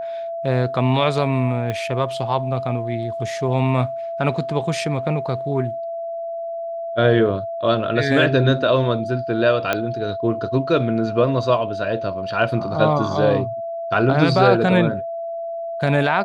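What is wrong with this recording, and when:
whistle 670 Hz −25 dBFS
0:01.70: click −13 dBFS
0:09.73: click −6 dBFS

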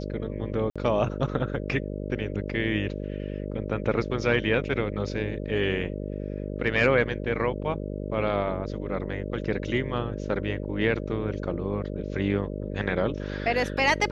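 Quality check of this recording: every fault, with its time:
mains buzz 50 Hz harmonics 12 −33 dBFS
0:00.70–0:00.76: drop-out 56 ms

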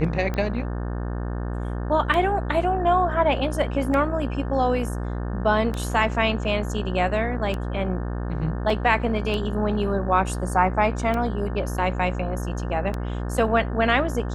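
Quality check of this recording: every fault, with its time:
mains buzz 60 Hz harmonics 30 −28 dBFS
scratch tick 33 1/3 rpm −15 dBFS
0:08.70: drop-out 2 ms

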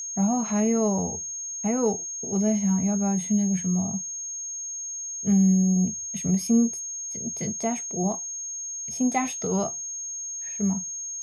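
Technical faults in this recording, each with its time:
whistle 6,500 Hz −31 dBFS

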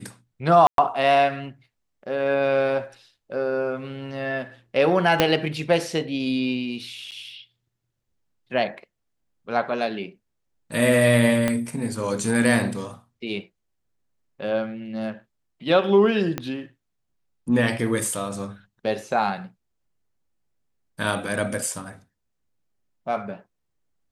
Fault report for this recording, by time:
0:00.67–0:00.78: drop-out 112 ms
0:05.20: click −2 dBFS
0:07.11–0:07.12: drop-out 8.3 ms
0:11.48: click −9 dBFS
0:16.38: click −12 dBFS

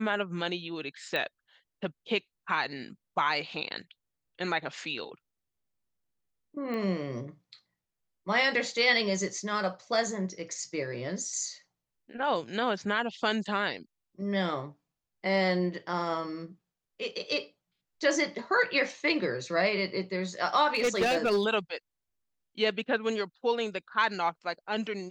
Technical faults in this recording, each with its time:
0:01.16: click −19 dBFS
0:06.74: click −24 dBFS
0:20.75–0:21.46: clipping −21.5 dBFS

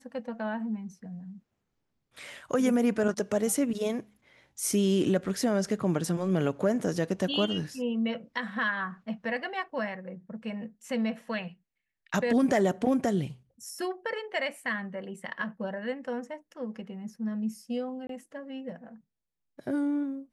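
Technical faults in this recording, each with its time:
0:18.07–0:18.09: drop-out 23 ms

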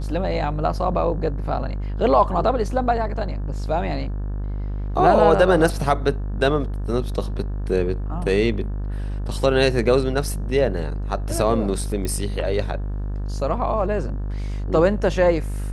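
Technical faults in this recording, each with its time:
mains buzz 50 Hz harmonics 36 −26 dBFS
0:12.05: click −14 dBFS

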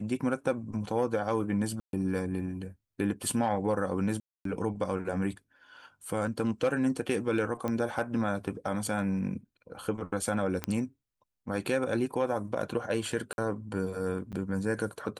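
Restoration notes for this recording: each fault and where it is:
0:01.80–0:01.93: drop-out 132 ms
0:04.20–0:04.45: drop-out 253 ms
0:07.68: click −20 dBFS
0:10.64: click −15 dBFS
0:13.33–0:13.38: drop-out 51 ms
0:14.32–0:14.33: drop-out 7.8 ms

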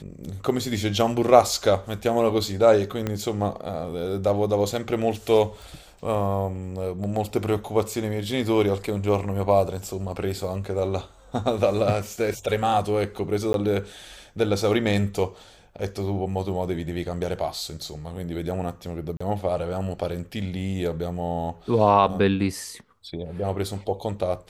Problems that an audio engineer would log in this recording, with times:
0:03.07: click −13 dBFS
0:05.62: click
0:13.53–0:13.54: drop-out 12 ms
0:19.17–0:19.20: drop-out 35 ms

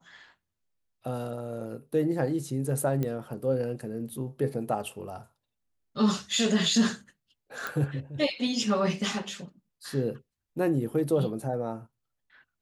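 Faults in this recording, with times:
0:03.03: click −18 dBFS
0:07.67: click

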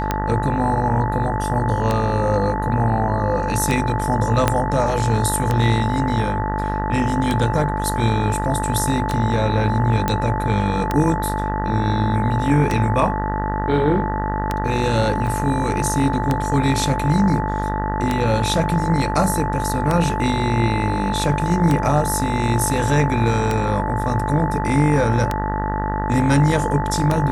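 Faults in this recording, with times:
mains buzz 50 Hz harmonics 39 −24 dBFS
scratch tick 33 1/3 rpm −6 dBFS
whistle 870 Hz −24 dBFS
0:04.48: click −2 dBFS
0:10.08: click −6 dBFS
0:15.27: drop-out 4.6 ms

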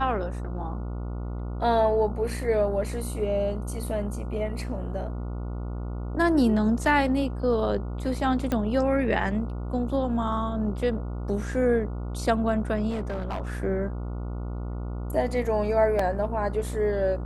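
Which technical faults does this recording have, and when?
mains buzz 60 Hz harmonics 24 −32 dBFS
0:08.52: click −14 dBFS
0:12.89–0:13.42: clipping −26 dBFS
0:15.99: drop-out 3.8 ms

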